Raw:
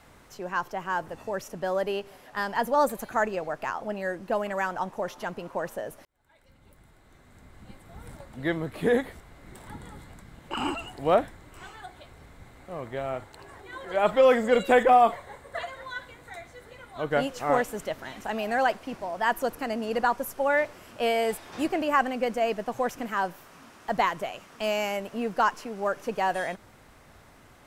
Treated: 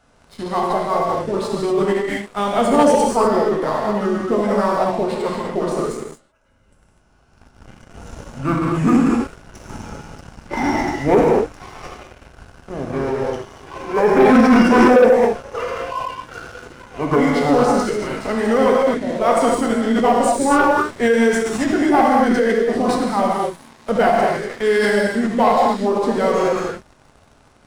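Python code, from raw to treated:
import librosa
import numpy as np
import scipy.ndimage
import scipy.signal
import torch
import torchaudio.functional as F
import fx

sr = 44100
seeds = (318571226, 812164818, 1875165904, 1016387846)

y = fx.rev_gated(x, sr, seeds[0], gate_ms=280, shape='flat', drr_db=-3.0)
y = fx.formant_shift(y, sr, semitones=-6)
y = fx.leveller(y, sr, passes=2)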